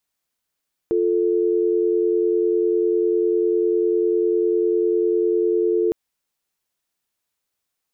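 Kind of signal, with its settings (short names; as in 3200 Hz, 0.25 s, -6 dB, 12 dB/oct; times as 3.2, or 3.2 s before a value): call progress tone dial tone, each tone -19 dBFS 5.01 s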